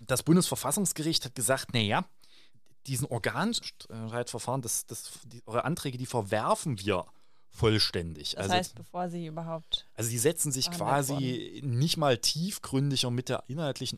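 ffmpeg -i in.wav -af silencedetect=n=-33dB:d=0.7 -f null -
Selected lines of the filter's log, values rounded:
silence_start: 2.02
silence_end: 2.88 | silence_duration: 0.86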